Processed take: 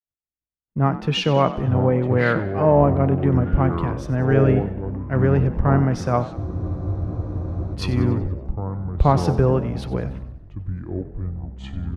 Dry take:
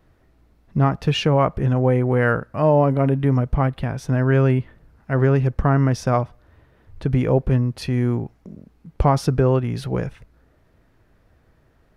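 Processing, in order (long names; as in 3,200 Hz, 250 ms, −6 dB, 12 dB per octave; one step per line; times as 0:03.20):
low-pass filter 3,000 Hz 6 dB per octave
in parallel at 0 dB: downward compressor, threshold −28 dBFS, peak gain reduction 15.5 dB
on the sum: delay with pitch and tempo change per echo 582 ms, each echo −6 semitones, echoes 3, each echo −6 dB
on a send: echo with shifted repeats 95 ms, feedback 63%, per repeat +38 Hz, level −14 dB
on the sum: downward expander −37 dBFS
frozen spectrum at 0:06.38, 1.36 s
multiband upward and downward expander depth 70%
level −3 dB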